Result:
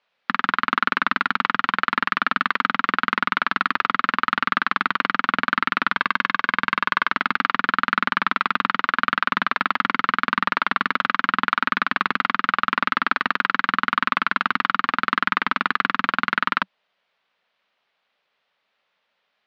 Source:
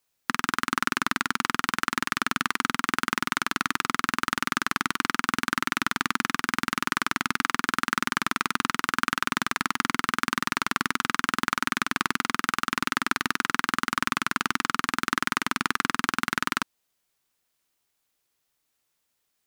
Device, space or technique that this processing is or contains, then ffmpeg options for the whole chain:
overdrive pedal into a guitar cabinet: -filter_complex "[0:a]asettb=1/sr,asplit=3[a][b][c];[a]atrim=end=5.964[d];[b]atrim=start=5.96:end=7.11,asetpts=PTS-STARTPTS,afade=t=in:d=0.004:c=qsin,afade=t=out:st=1.146:d=0.004:c=qsin,aecho=1:1:1.9:0.31,atrim=end_sample=50715[e];[c]atrim=start=7.106[f];[d][e]acrossfade=d=0.004:c1=hsin:c2=qsin[g];[g][f]acrossfade=d=0.004:c1=qsin:c2=hsin,asplit=2[h][i];[i]highpass=f=720:p=1,volume=18dB,asoftclip=type=tanh:threshold=-2.5dB[j];[h][j]amix=inputs=2:normalize=0,lowpass=f=3.5k:p=1,volume=-6dB,highpass=82,equalizer=f=120:t=q:w=4:g=-7,equalizer=f=190:t=q:w=4:g=5,equalizer=f=320:t=q:w=4:g=-8,equalizer=f=580:t=q:w=4:g=5,lowpass=f=3.8k:w=0.5412,lowpass=f=3.8k:w=1.3066"

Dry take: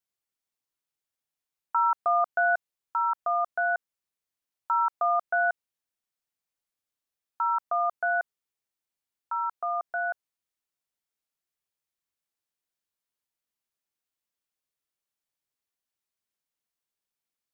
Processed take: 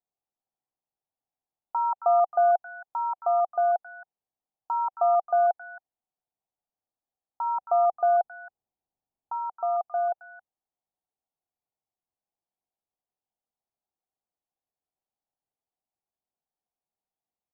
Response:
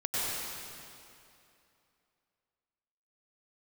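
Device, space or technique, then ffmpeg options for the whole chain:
under water: -filter_complex "[0:a]asplit=3[a][b][c];[a]afade=t=out:st=7.45:d=0.02[d];[b]lowshelf=f=390:g=7,afade=t=in:st=7.45:d=0.02,afade=t=out:st=9.37:d=0.02[e];[c]afade=t=in:st=9.37:d=0.02[f];[d][e][f]amix=inputs=3:normalize=0,lowpass=f=1.1k:w=0.5412,lowpass=f=1.1k:w=1.3066,equalizer=f=760:t=o:w=0.36:g=10,acrossover=split=1500[g][h];[h]adelay=270[i];[g][i]amix=inputs=2:normalize=0"

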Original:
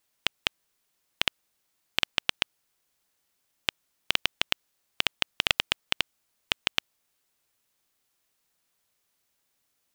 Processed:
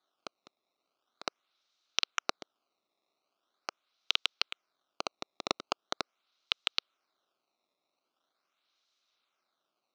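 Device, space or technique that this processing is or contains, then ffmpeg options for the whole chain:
circuit-bent sampling toy: -af "acrusher=samples=16:mix=1:aa=0.000001:lfo=1:lforange=25.6:lforate=0.42,highpass=460,equalizer=f=480:t=q:w=4:g=-7,equalizer=f=900:t=q:w=4:g=-7,equalizer=f=1.3k:t=q:w=4:g=5,equalizer=f=1.8k:t=q:w=4:g=-10,equalizer=f=3.9k:t=q:w=4:g=9,equalizer=f=5.8k:t=q:w=4:g=5,lowpass=f=5.9k:w=0.5412,lowpass=f=5.9k:w=1.3066,volume=-4.5dB"

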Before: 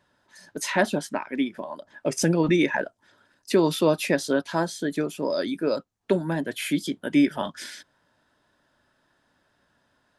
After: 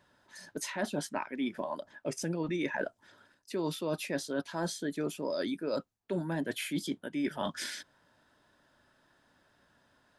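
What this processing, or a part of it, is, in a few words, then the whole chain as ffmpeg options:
compression on the reversed sound: -af "areverse,acompressor=threshold=-30dB:ratio=10,areverse"

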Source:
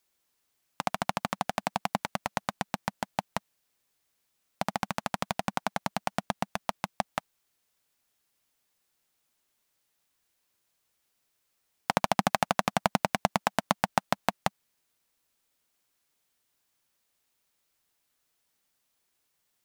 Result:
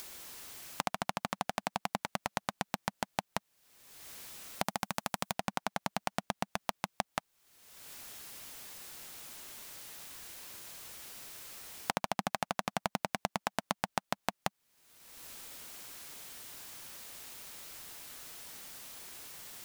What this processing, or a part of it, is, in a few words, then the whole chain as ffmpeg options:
upward and downward compression: -filter_complex "[0:a]asettb=1/sr,asplit=3[a][b][c];[a]atrim=end=4.634[d];[b]atrim=start=4.63:end=5.33,asetpts=PTS-STARTPTS,afade=t=in:d=0.004:c=qsin,afade=t=out:st=0.696:d=0.004:c=qsin,highshelf=f=6.1k:g=9.5[e];[c]atrim=start=5.326[f];[d][e]acrossfade=d=0.004:c1=hsin:c2=qsin[g];[g][f]acrossfade=d=0.004:c1=qsin:c2=hsin,acompressor=mode=upward:threshold=-46dB:ratio=2.5,acompressor=threshold=-46dB:ratio=4,volume=12.5dB"

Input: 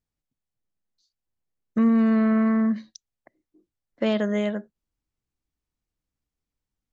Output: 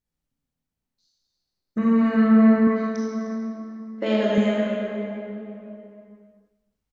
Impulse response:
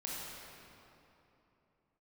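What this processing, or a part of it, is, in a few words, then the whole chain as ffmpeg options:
cave: -filter_complex "[0:a]aecho=1:1:304:0.133[a];[1:a]atrim=start_sample=2205[b];[a][b]afir=irnorm=-1:irlink=0,asettb=1/sr,asplit=3[c][d][e];[c]atrim=end=2.674[f];[d]atrim=start=2.67:end=4.38,asetpts=PTS-STARTPTS,afade=t=in:d=0.004:c=qsin,afade=t=out:st=1.706:d=0.004:c=qsin,lowshelf=f=230:t=q:w=1.5:g=-6[g];[e]atrim=start=4.376[h];[f][g]acrossfade=d=0.004:c1=hsin:c2=qsin[i];[i][h]acrossfade=d=0.004:c1=qsin:c2=hsin,volume=2.5dB"

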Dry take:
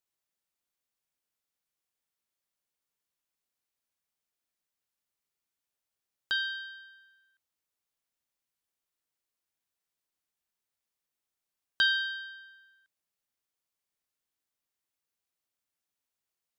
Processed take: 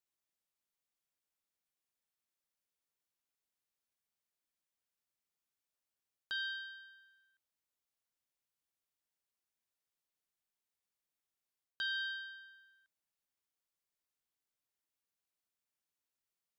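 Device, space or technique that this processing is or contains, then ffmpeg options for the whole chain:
compression on the reversed sound: -af "areverse,acompressor=threshold=-31dB:ratio=5,areverse,volume=-4.5dB"

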